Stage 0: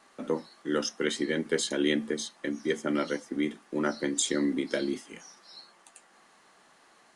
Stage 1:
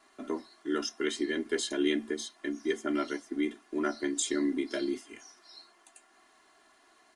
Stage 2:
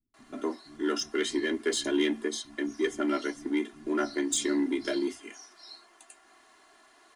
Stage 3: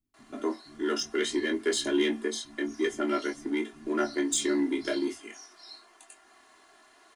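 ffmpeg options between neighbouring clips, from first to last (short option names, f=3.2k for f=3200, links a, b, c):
-af "bandreject=f=490:w=12,aecho=1:1:2.9:0.8,volume=-5dB"
-filter_complex "[0:a]asplit=2[a][b];[b]asoftclip=type=hard:threshold=-29.5dB,volume=-5.5dB[c];[a][c]amix=inputs=2:normalize=0,acrossover=split=160[d][e];[e]adelay=140[f];[d][f]amix=inputs=2:normalize=0"
-filter_complex "[0:a]asplit=2[a][b];[b]adelay=22,volume=-7.5dB[c];[a][c]amix=inputs=2:normalize=0"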